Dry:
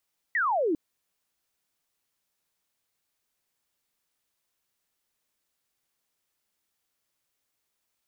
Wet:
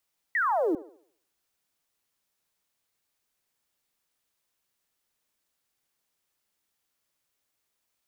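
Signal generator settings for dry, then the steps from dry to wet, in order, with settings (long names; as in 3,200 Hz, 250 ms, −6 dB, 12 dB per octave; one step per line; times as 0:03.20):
single falling chirp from 2,000 Hz, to 290 Hz, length 0.40 s sine, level −22.5 dB
one scale factor per block 7 bits
on a send: delay with a band-pass on its return 71 ms, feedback 42%, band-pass 840 Hz, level −11.5 dB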